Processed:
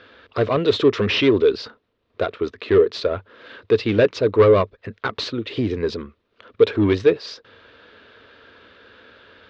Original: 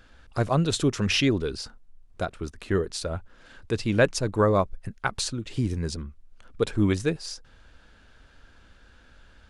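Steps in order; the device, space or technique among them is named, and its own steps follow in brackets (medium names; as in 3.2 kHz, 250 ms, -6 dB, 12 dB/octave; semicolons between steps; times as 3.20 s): overdrive pedal into a guitar cabinet (overdrive pedal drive 22 dB, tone 1.5 kHz, clips at -7 dBFS; cabinet simulation 100–4600 Hz, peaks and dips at 100 Hz +6 dB, 160 Hz -9 dB, 440 Hz +8 dB, 800 Hz -10 dB, 1.5 kHz -4 dB, 3.7 kHz +4 dB)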